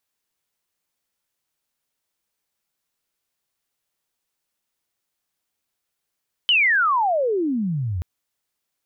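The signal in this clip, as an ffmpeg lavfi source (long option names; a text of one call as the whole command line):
ffmpeg -f lavfi -i "aevalsrc='pow(10,(-13.5-9*t/1.53)/20)*sin(2*PI*3100*1.53/log(81/3100)*(exp(log(81/3100)*t/1.53)-1))':duration=1.53:sample_rate=44100" out.wav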